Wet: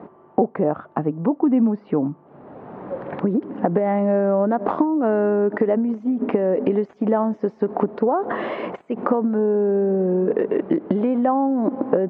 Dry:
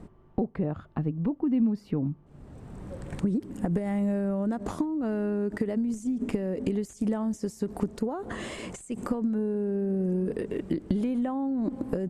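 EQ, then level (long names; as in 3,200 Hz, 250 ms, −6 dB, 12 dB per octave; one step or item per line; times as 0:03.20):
band-pass filter 190–4,400 Hz
high-frequency loss of the air 310 metres
parametric band 800 Hz +15 dB 2.9 octaves
+2.5 dB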